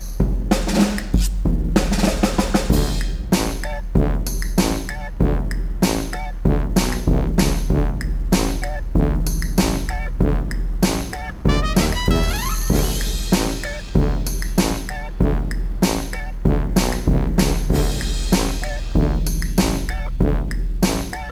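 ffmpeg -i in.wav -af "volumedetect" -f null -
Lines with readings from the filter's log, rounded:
mean_volume: -18.8 dB
max_volume: -3.7 dB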